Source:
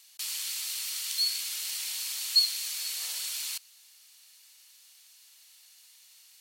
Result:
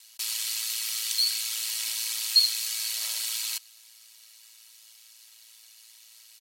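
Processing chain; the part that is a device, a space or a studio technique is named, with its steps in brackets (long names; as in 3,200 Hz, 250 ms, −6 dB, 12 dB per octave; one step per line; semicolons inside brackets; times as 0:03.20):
ring-modulated robot voice (ring modulation 56 Hz; comb filter 3.1 ms, depth 68%)
level +5 dB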